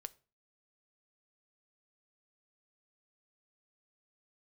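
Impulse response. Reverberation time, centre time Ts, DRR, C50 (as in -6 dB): 0.35 s, 2 ms, 12.0 dB, 23.0 dB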